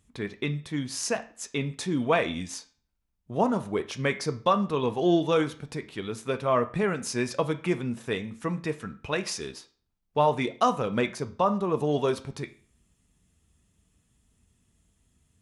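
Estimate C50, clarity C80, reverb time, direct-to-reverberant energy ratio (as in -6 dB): 15.5 dB, 20.0 dB, 0.45 s, 9.0 dB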